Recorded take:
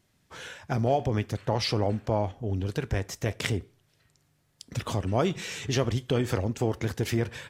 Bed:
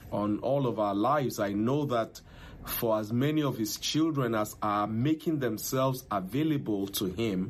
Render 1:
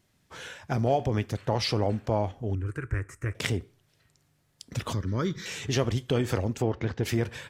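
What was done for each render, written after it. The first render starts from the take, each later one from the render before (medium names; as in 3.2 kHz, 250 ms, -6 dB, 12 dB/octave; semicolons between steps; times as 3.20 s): 2.55–3.35 s: FFT filter 130 Hz 0 dB, 200 Hz -16 dB, 320 Hz -1 dB, 760 Hz -19 dB, 1.3 kHz +5 dB, 2.4 kHz -5 dB, 3.4 kHz -25 dB, 5.7 kHz -18 dB, 8.7 kHz -2 dB, 15 kHz -21 dB; 4.93–5.46 s: static phaser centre 2.7 kHz, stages 6; 6.62–7.04 s: Gaussian low-pass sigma 1.9 samples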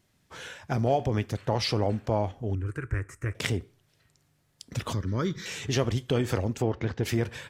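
no audible change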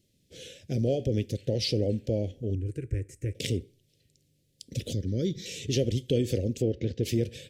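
Chebyshev band-stop 350–3200 Hz, order 2; peaking EQ 530 Hz +11 dB 0.49 oct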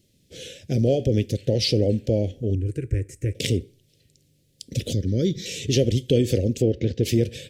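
trim +6.5 dB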